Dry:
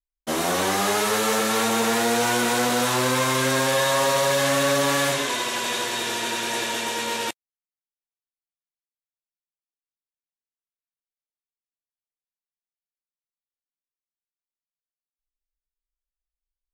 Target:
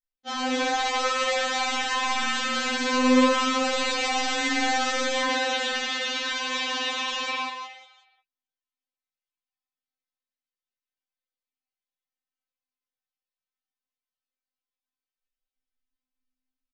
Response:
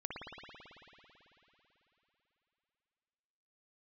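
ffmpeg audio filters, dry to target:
-filter_complex "[0:a]lowpass=f=5.7k:w=0.5412,lowpass=f=5.7k:w=1.3066,highshelf=f=3.4k:g=5,aresample=16000,aeval=exprs='0.106*(abs(mod(val(0)/0.106+3,4)-2)-1)':c=same,aresample=44100,asplit=5[a][b][c][d][e];[b]adelay=182,afreqshift=110,volume=-5.5dB[f];[c]adelay=364,afreqshift=220,volume=-14.4dB[g];[d]adelay=546,afreqshift=330,volume=-23.2dB[h];[e]adelay=728,afreqshift=440,volume=-32.1dB[i];[a][f][g][h][i]amix=inputs=5:normalize=0[j];[1:a]atrim=start_sample=2205,afade=t=out:st=0.25:d=0.01,atrim=end_sample=11466[k];[j][k]afir=irnorm=-1:irlink=0,afftfilt=real='re*3.46*eq(mod(b,12),0)':imag='im*3.46*eq(mod(b,12),0)':win_size=2048:overlap=0.75,volume=2dB"

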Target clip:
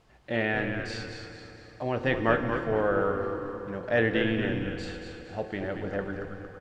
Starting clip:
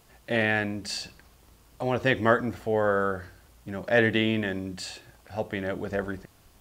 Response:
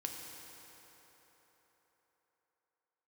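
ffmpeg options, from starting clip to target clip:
-filter_complex "[0:a]aemphasis=mode=reproduction:type=50fm,asplit=6[a][b][c][d][e][f];[b]adelay=229,afreqshift=-98,volume=-7dB[g];[c]adelay=458,afreqshift=-196,volume=-14.3dB[h];[d]adelay=687,afreqshift=-294,volume=-21.7dB[i];[e]adelay=916,afreqshift=-392,volume=-29dB[j];[f]adelay=1145,afreqshift=-490,volume=-36.3dB[k];[a][g][h][i][j][k]amix=inputs=6:normalize=0,asplit=2[l][m];[1:a]atrim=start_sample=2205,lowpass=8.5k[n];[m][n]afir=irnorm=-1:irlink=0,volume=0.5dB[o];[l][o]amix=inputs=2:normalize=0,volume=-8dB"

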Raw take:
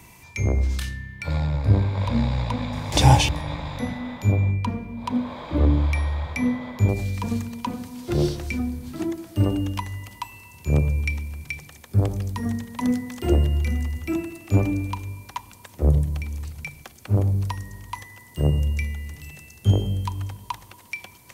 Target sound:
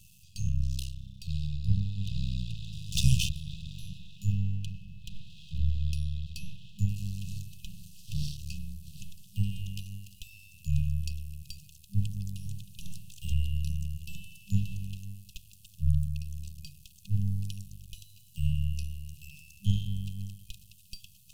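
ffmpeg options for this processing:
-af "aeval=exprs='max(val(0),0)':c=same,afftfilt=real='re*(1-between(b*sr/4096,200,2500))':imag='im*(1-between(b*sr/4096,200,2500))':win_size=4096:overlap=0.75,volume=-3.5dB"

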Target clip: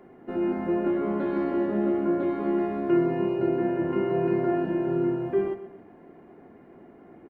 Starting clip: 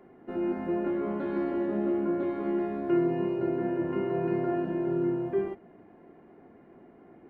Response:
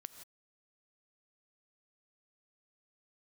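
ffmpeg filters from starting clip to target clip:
-af "aecho=1:1:125|250|375:0.2|0.0718|0.0259,volume=3.5dB"

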